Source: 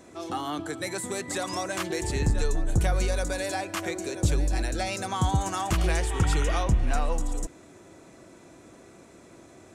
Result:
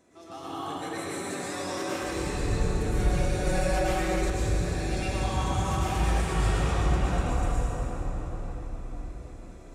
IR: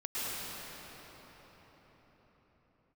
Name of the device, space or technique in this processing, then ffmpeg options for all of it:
cathedral: -filter_complex "[1:a]atrim=start_sample=2205[a];[0:a][a]afir=irnorm=-1:irlink=0,asettb=1/sr,asplit=3[b][c][d];[b]atrim=end=3.464[e];[c]atrim=start=3.46:end=4.3,asetpts=PTS-STARTPTS,afade=t=in:d=0.004:c=qsin,afade=t=out:st=0.836:d=0.004:c=qsin,aecho=1:1:5.5:0.86,atrim=end_sample=37044[f];[d]atrim=start=4.296[g];[e][f]acrossfade=d=0.004:c1=hsin:c2=qsin[h];[h][g]acrossfade=d=0.004:c1=qsin:c2=hsin,volume=-7.5dB"

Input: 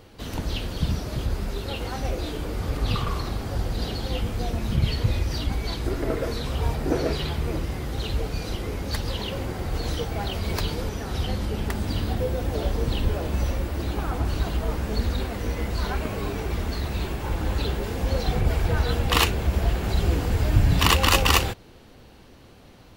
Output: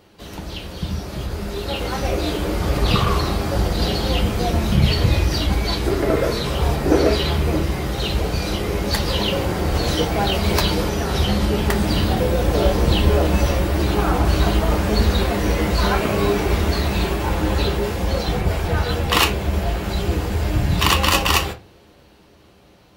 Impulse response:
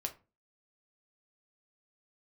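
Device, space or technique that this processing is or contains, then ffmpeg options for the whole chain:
far laptop microphone: -filter_complex "[1:a]atrim=start_sample=2205[a];[0:a][a]afir=irnorm=-1:irlink=0,highpass=f=100:p=1,dynaudnorm=f=250:g=13:m=11.5dB"

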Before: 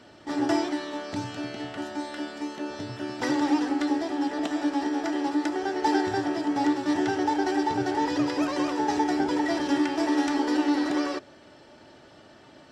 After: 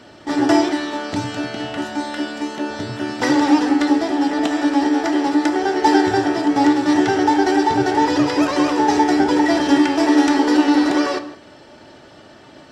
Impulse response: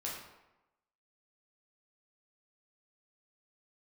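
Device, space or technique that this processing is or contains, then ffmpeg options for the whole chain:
keyed gated reverb: -filter_complex "[0:a]asplit=3[a][b][c];[1:a]atrim=start_sample=2205[d];[b][d]afir=irnorm=-1:irlink=0[e];[c]apad=whole_len=560926[f];[e][f]sidechaingate=range=-33dB:threshold=-48dB:ratio=16:detection=peak,volume=-8dB[g];[a][g]amix=inputs=2:normalize=0,volume=7.5dB"

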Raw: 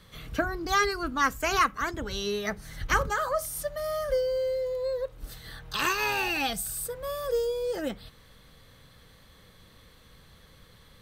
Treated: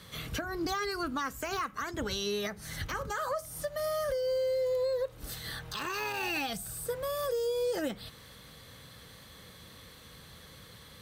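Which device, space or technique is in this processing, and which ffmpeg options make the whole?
podcast mastering chain: -af "highpass=69,equalizer=f=9.9k:t=o:w=2.4:g=4,deesser=0.75,acompressor=threshold=-30dB:ratio=4,alimiter=level_in=4dB:limit=-24dB:level=0:latency=1:release=270,volume=-4dB,volume=4dB" -ar 44100 -c:a libmp3lame -b:a 112k

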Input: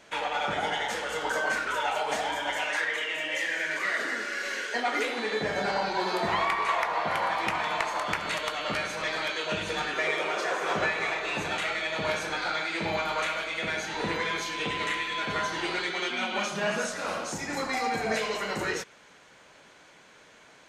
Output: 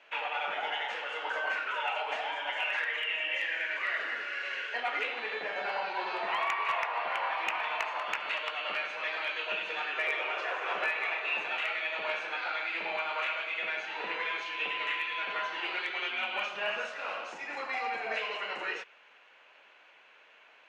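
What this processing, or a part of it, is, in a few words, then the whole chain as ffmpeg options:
megaphone: -af "highpass=580,lowpass=2.7k,equalizer=f=2.7k:t=o:w=0.37:g=11,asoftclip=type=hard:threshold=-18dB,volume=-4dB"

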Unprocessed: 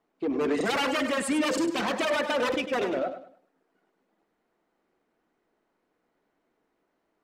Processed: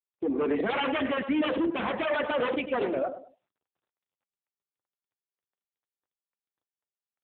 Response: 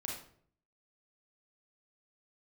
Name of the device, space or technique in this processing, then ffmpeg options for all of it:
mobile call with aggressive noise cancelling: -af "highpass=110,afftdn=nr=30:nf=-48" -ar 8000 -c:a libopencore_amrnb -b:a 7950

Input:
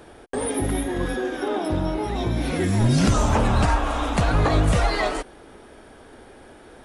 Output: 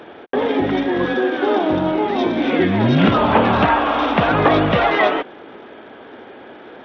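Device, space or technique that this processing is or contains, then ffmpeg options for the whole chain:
Bluetooth headset: -filter_complex "[0:a]asettb=1/sr,asplit=3[a][b][c];[a]atrim=end=2.064[d];[b]atrim=start=2.06:end=2.6,asetpts=PTS-STARTPTS,afade=t=in:d=0.004:c=qsin,afade=t=out:st=0.536:d=0.004:c=qsin,lowshelf=f=180:t=q:w=1.5:g=-9[e];[c]atrim=start=2.596[f];[d][e]acrossfade=d=0.004:c1=hsin:c2=qsin[g];[g][f]acrossfade=d=0.004:c1=qsin:c2=hsin,highpass=200,aresample=8000,aresample=44100,volume=8.5dB" -ar 32000 -c:a sbc -b:a 64k

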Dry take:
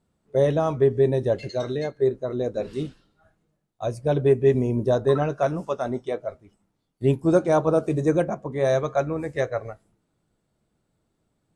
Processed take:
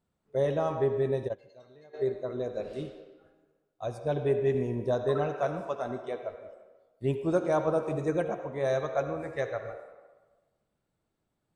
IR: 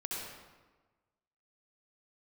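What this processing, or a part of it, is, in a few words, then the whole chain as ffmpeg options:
filtered reverb send: -filter_complex "[0:a]asplit=2[a][b];[b]highpass=440,lowpass=4.7k[c];[1:a]atrim=start_sample=2205[d];[c][d]afir=irnorm=-1:irlink=0,volume=-5dB[e];[a][e]amix=inputs=2:normalize=0,asplit=3[f][g][h];[f]afade=t=out:st=1.27:d=0.02[i];[g]agate=range=-20dB:threshold=-17dB:ratio=16:detection=peak,afade=t=in:st=1.27:d=0.02,afade=t=out:st=1.93:d=0.02[j];[h]afade=t=in:st=1.93:d=0.02[k];[i][j][k]amix=inputs=3:normalize=0,volume=-8.5dB"

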